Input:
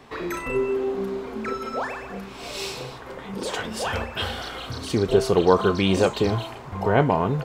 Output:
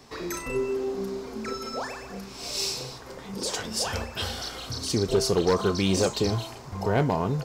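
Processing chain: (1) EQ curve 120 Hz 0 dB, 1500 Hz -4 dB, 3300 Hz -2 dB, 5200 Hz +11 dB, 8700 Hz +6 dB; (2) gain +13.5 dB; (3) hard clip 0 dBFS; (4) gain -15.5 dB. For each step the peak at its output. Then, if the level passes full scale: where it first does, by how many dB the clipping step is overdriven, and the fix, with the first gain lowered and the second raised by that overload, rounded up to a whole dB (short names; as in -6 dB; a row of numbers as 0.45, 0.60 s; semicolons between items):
-5.0, +8.5, 0.0, -15.5 dBFS; step 2, 8.5 dB; step 2 +4.5 dB, step 4 -6.5 dB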